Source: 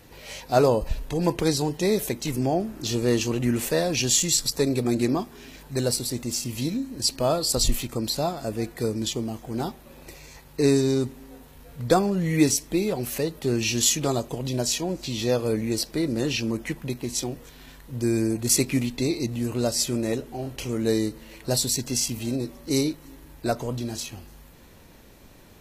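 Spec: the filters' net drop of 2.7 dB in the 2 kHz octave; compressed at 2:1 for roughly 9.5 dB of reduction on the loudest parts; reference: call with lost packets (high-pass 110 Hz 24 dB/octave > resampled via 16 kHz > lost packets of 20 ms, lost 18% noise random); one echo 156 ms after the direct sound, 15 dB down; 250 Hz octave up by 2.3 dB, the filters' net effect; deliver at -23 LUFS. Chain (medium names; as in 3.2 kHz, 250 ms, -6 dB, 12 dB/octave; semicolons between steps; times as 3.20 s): peaking EQ 250 Hz +3 dB; peaking EQ 2 kHz -3.5 dB; compression 2:1, threshold -31 dBFS; high-pass 110 Hz 24 dB/octave; delay 156 ms -15 dB; resampled via 16 kHz; lost packets of 20 ms, lost 18% noise random; trim +8 dB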